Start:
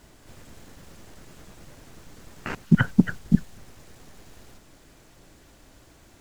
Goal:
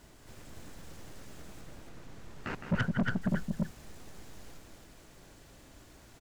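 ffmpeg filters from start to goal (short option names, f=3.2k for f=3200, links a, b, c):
-filter_complex "[0:a]asettb=1/sr,asplit=3[a][b][c];[a]atrim=end=1.614[d];[b]atrim=start=1.61:end=3.22,asetpts=PTS-STARTPTS,afade=t=in:d=0.004:c=qsin,afade=t=out:st=1.606:d=0.004:c=qsin,highshelf=f=5.1k:g=-9.5[e];[c]atrim=start=3.216[f];[d][e]acrossfade=d=0.004:c1=hsin:c2=qsin[g];[g][f]acrossfade=d=0.004:c1=qsin:c2=hsin,aecho=1:1:163.3|277:0.316|0.631,asoftclip=type=tanh:threshold=-20.5dB,volume=-3.5dB"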